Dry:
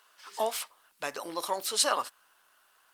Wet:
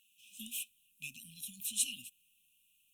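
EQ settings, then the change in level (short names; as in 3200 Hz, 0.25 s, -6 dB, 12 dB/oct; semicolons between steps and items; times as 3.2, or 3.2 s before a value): brick-wall FIR band-stop 260–2400 Hz; fixed phaser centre 2000 Hz, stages 4; 0.0 dB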